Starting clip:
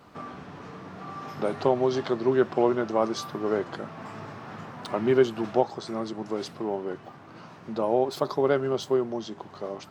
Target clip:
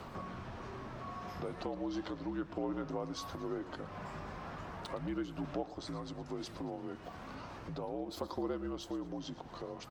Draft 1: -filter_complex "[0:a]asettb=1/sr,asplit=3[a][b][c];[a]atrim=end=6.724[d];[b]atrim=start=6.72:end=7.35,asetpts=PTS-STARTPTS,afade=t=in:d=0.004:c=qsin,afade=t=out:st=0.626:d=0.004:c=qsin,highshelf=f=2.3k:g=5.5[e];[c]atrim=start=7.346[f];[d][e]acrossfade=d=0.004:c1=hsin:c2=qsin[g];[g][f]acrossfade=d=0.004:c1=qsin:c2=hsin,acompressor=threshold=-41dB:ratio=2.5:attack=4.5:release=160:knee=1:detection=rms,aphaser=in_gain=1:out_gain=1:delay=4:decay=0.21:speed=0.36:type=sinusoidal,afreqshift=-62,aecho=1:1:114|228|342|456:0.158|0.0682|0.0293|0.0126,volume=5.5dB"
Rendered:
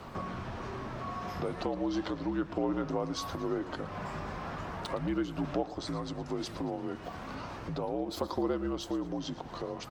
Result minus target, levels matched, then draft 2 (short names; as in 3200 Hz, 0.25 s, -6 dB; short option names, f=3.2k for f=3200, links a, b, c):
compressor: peak gain reduction -6 dB
-filter_complex "[0:a]asettb=1/sr,asplit=3[a][b][c];[a]atrim=end=6.724[d];[b]atrim=start=6.72:end=7.35,asetpts=PTS-STARTPTS,afade=t=in:d=0.004:c=qsin,afade=t=out:st=0.626:d=0.004:c=qsin,highshelf=f=2.3k:g=5.5[e];[c]atrim=start=7.346[f];[d][e]acrossfade=d=0.004:c1=hsin:c2=qsin[g];[g][f]acrossfade=d=0.004:c1=qsin:c2=hsin,acompressor=threshold=-51dB:ratio=2.5:attack=4.5:release=160:knee=1:detection=rms,aphaser=in_gain=1:out_gain=1:delay=4:decay=0.21:speed=0.36:type=sinusoidal,afreqshift=-62,aecho=1:1:114|228|342|456:0.158|0.0682|0.0293|0.0126,volume=5.5dB"